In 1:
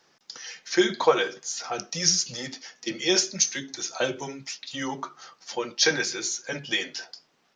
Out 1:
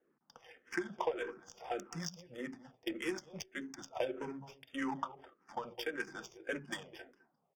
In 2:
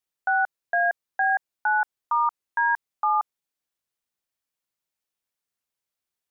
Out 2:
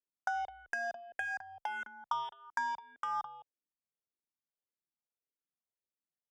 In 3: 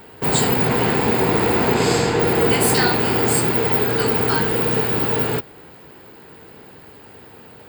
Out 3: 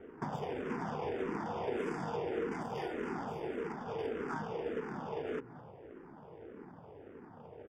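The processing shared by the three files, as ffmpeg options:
ffmpeg -i in.wav -filter_complex "[0:a]lowshelf=frequency=120:gain=-10,bandreject=frequency=60:width_type=h:width=6,bandreject=frequency=120:width_type=h:width=6,acompressor=threshold=-28dB:ratio=20,asplit=2[link_01][link_02];[link_02]adelay=209.9,volume=-12dB,highshelf=frequency=4000:gain=-4.72[link_03];[link_01][link_03]amix=inputs=2:normalize=0,adynamicsmooth=sensitivity=3.5:basefreq=640,asuperstop=centerf=4100:order=20:qfactor=4.3,asplit=2[link_04][link_05];[link_05]afreqshift=-1.7[link_06];[link_04][link_06]amix=inputs=2:normalize=1,volume=-1dB" out.wav

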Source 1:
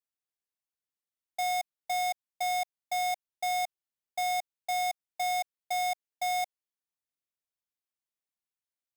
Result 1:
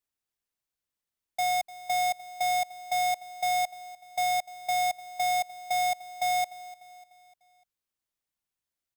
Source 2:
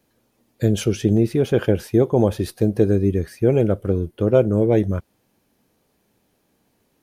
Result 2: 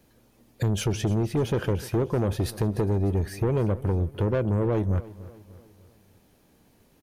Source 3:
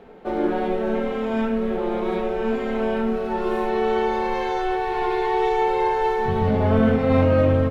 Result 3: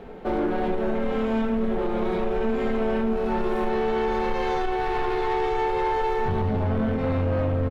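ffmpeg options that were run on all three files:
ffmpeg -i in.wav -af "lowshelf=frequency=120:gain=8.5,acompressor=threshold=-21dB:ratio=5,asoftclip=type=tanh:threshold=-22.5dB,aecho=1:1:298|596|894|1192:0.126|0.0592|0.0278|0.0131,volume=3.5dB" out.wav

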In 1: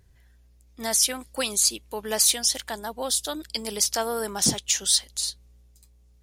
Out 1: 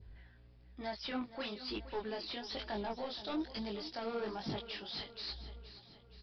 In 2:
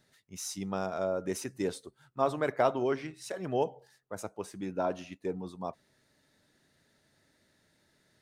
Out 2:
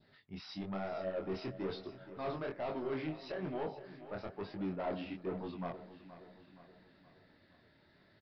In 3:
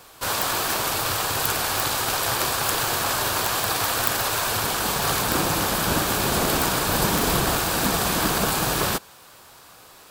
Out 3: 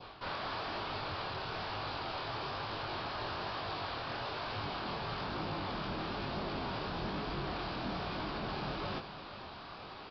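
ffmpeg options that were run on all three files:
ffmpeg -i in.wav -af "areverse,acompressor=threshold=-33dB:ratio=6,areverse,bandreject=frequency=490:width=12,aresample=11025,asoftclip=type=tanh:threshold=-37.5dB,aresample=44100,adynamicequalizer=threshold=0.00126:dfrequency=1700:dqfactor=1.9:tfrequency=1700:tqfactor=1.9:attack=5:release=100:ratio=0.375:range=2:mode=cutabove:tftype=bell,flanger=delay=19:depth=7.3:speed=1.1,aemphasis=mode=reproduction:type=50fm,aecho=1:1:472|944|1416|1888|2360:0.2|0.104|0.054|0.0281|0.0146,volume=6.5dB" out.wav

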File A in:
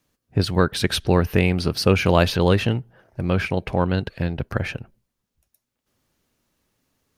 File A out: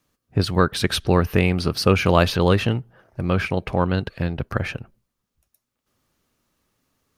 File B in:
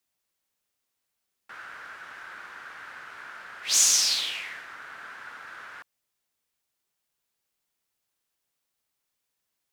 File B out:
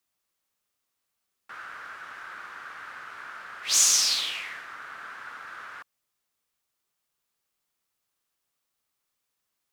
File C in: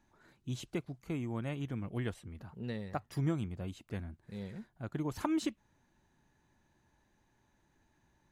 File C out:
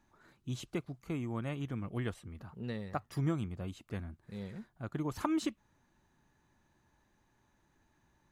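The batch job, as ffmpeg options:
ffmpeg -i in.wav -af "equalizer=frequency=1200:width_type=o:width=0.3:gain=5" out.wav

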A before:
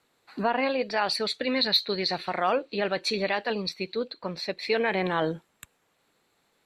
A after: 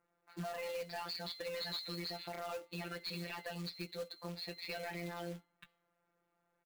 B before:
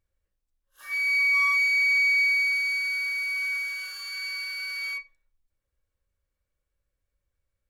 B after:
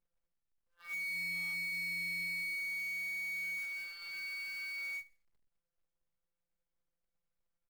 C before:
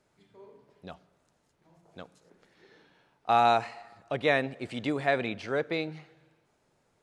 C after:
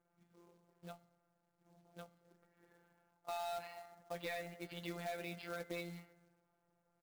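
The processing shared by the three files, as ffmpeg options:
ffmpeg -i in.wav -filter_complex "[0:a]afftfilt=real='hypot(re,im)*cos(PI*b)':imag='0':win_size=1024:overlap=0.75,asplit=2[link_01][link_02];[link_02]adelay=16,volume=-10dB[link_03];[link_01][link_03]amix=inputs=2:normalize=0,acrossover=split=2200[link_04][link_05];[link_04]alimiter=limit=-23.5dB:level=0:latency=1:release=143[link_06];[link_05]agate=range=-33dB:threshold=-57dB:ratio=3:detection=peak[link_07];[link_06][link_07]amix=inputs=2:normalize=0,bandreject=frequency=295.1:width_type=h:width=4,bandreject=frequency=590.2:width_type=h:width=4,bandreject=frequency=885.3:width_type=h:width=4,bandreject=frequency=1180.4:width_type=h:width=4,bandreject=frequency=1475.5:width_type=h:width=4,bandreject=frequency=1770.6:width_type=h:width=4,bandreject=frequency=2065.7:width_type=h:width=4,bandreject=frequency=2360.8:width_type=h:width=4,bandreject=frequency=2655.9:width_type=h:width=4,bandreject=frequency=2951:width_type=h:width=4,bandreject=frequency=3246.1:width_type=h:width=4,bandreject=frequency=3541.2:width_type=h:width=4,bandreject=frequency=3836.3:width_type=h:width=4,bandreject=frequency=4131.4:width_type=h:width=4,bandreject=frequency=4426.5:width_type=h:width=4,bandreject=frequency=4721.6:width_type=h:width=4,bandreject=frequency=5016.7:width_type=h:width=4,bandreject=frequency=5311.8:width_type=h:width=4,bandreject=frequency=5606.9:width_type=h:width=4,bandreject=frequency=5902:width_type=h:width=4,bandreject=frequency=6197.1:width_type=h:width=4,bandreject=frequency=6492.2:width_type=h:width=4,bandreject=frequency=6787.3:width_type=h:width=4,bandreject=frequency=7082.4:width_type=h:width=4,bandreject=frequency=7377.5:width_type=h:width=4,bandreject=frequency=7672.6:width_type=h:width=4,bandreject=frequency=7967.7:width_type=h:width=4,bandreject=frequency=8262.8:width_type=h:width=4,aresample=11025,asoftclip=type=hard:threshold=-27.5dB,aresample=44100,acrusher=bits=3:mode=log:mix=0:aa=0.000001,acompressor=threshold=-35dB:ratio=2,volume=-5.5dB" out.wav

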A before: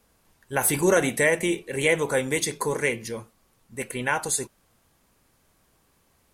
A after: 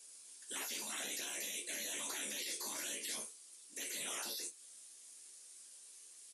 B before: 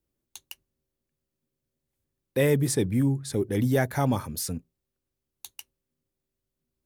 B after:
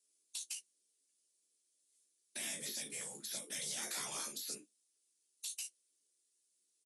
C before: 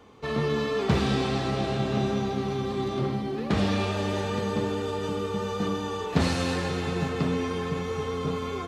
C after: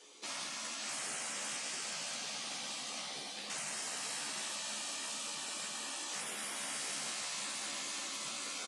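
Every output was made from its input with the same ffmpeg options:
ffmpeg -i in.wav -filter_complex "[0:a]afftfilt=real='hypot(re,im)*cos(2*PI*random(0))':imag='hypot(re,im)*sin(2*PI*random(1))':win_size=512:overlap=0.75,highpass=frequency=340:width=0.5412,highpass=frequency=340:width=1.3066,equalizer=frequency=950:width=0.4:gain=-14.5,acompressor=threshold=-41dB:ratio=4,alimiter=level_in=14dB:limit=-24dB:level=0:latency=1:release=14,volume=-14dB,aresample=22050,aresample=44100,crystalizer=i=7:c=0,asplit=2[link_01][link_02];[link_02]adelay=14,volume=-5dB[link_03];[link_01][link_03]amix=inputs=2:normalize=0,asplit=2[link_04][link_05];[link_05]aecho=0:1:33|56:0.299|0.211[link_06];[link_04][link_06]amix=inputs=2:normalize=0,afftfilt=real='re*lt(hypot(re,im),0.0158)':imag='im*lt(hypot(re,im),0.0158)':win_size=1024:overlap=0.75,volume=4dB" out.wav

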